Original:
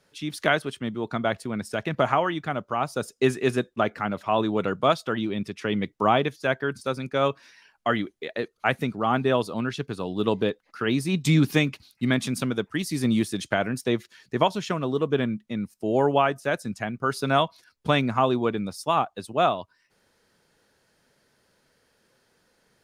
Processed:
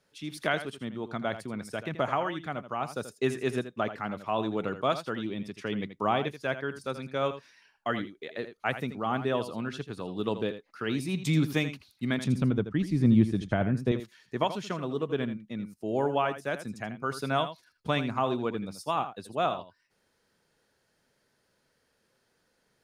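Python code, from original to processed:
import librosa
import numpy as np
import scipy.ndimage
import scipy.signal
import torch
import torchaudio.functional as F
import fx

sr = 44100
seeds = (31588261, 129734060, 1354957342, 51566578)

p1 = fx.riaa(x, sr, side='playback', at=(12.24, 13.92))
p2 = p1 + fx.echo_single(p1, sr, ms=82, db=-11.5, dry=0)
y = p2 * 10.0 ** (-6.5 / 20.0)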